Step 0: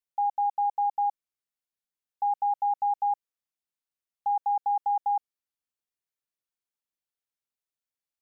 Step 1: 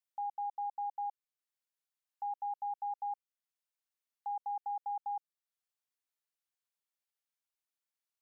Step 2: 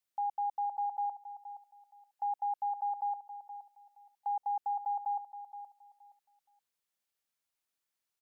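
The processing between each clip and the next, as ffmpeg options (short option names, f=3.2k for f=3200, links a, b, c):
-af "highpass=590,alimiter=level_in=7.5dB:limit=-24dB:level=0:latency=1:release=456,volume=-7.5dB,volume=-1.5dB"
-af "aecho=1:1:471|942|1413:0.251|0.0553|0.0122,volume=4dB"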